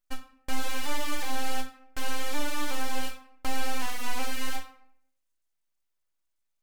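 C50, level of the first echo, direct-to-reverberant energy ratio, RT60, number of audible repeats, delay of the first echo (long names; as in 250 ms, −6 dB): 10.0 dB, no echo audible, 5.5 dB, 0.65 s, no echo audible, no echo audible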